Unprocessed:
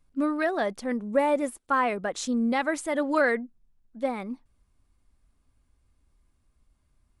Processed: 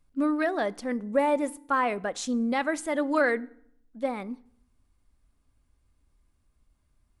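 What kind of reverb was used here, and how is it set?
FDN reverb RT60 0.67 s, low-frequency decay 1.25×, high-frequency decay 0.75×, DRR 18.5 dB; trim -1 dB

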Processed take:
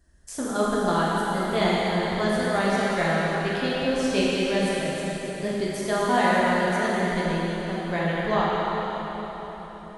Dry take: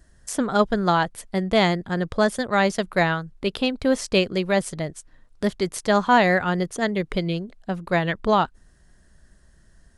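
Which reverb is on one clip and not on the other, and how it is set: plate-style reverb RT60 4.6 s, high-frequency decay 0.9×, DRR -7.5 dB; trim -9.5 dB

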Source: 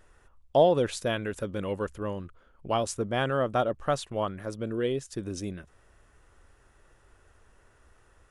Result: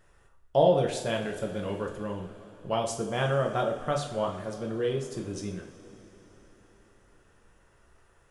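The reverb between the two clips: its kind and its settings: two-slope reverb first 0.48 s, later 4.5 s, from -18 dB, DRR 0.5 dB; trim -3.5 dB

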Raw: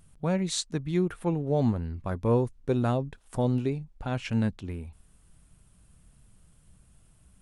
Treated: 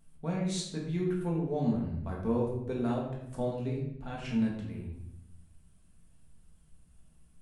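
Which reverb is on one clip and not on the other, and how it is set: simulated room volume 260 m³, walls mixed, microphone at 1.6 m; trim -10.5 dB

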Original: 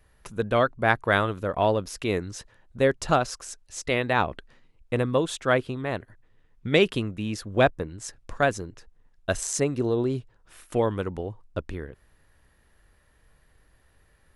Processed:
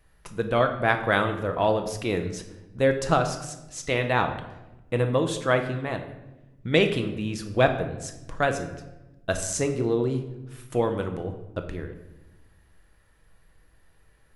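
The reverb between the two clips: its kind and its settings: simulated room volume 420 m³, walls mixed, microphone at 0.67 m; trim -1 dB

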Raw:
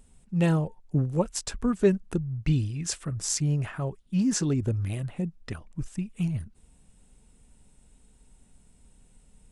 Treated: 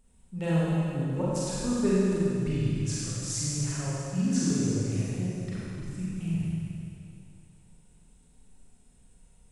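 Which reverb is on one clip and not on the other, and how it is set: Schroeder reverb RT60 2.7 s, combs from 33 ms, DRR -8 dB; trim -9.5 dB

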